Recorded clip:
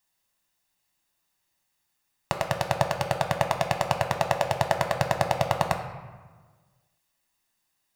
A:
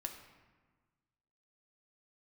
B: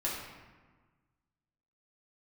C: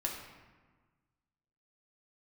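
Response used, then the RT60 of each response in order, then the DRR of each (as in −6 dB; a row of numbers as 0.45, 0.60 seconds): A; 1.4, 1.4, 1.4 seconds; 4.0, −5.5, −0.5 decibels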